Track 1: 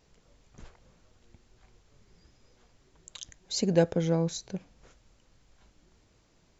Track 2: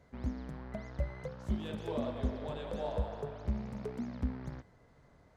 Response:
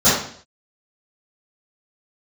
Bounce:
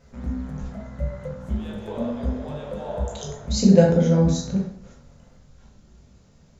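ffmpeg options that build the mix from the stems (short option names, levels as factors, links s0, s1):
-filter_complex "[0:a]lowshelf=f=160:g=11,volume=1,asplit=3[s0][s1][s2];[s1]volume=0.0944[s3];[1:a]equalizer=f=5000:t=o:w=0.67:g=-8.5,volume=1.33,asplit=2[s4][s5];[s5]volume=0.0631[s6];[s2]apad=whole_len=236695[s7];[s4][s7]sidechaincompress=threshold=0.01:ratio=8:attack=26:release=778[s8];[2:a]atrim=start_sample=2205[s9];[s3][s6]amix=inputs=2:normalize=0[s10];[s10][s9]afir=irnorm=-1:irlink=0[s11];[s0][s8][s11]amix=inputs=3:normalize=0"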